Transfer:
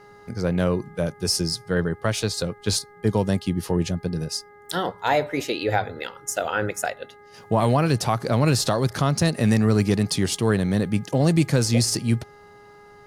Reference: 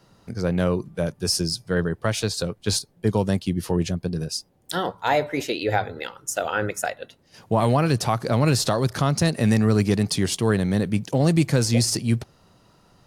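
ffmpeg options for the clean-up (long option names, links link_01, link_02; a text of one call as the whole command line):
ffmpeg -i in.wav -af "bandreject=frequency=412.1:width_type=h:width=4,bandreject=frequency=824.2:width_type=h:width=4,bandreject=frequency=1236.3:width_type=h:width=4,bandreject=frequency=1648.4:width_type=h:width=4,bandreject=frequency=2060.5:width_type=h:width=4" out.wav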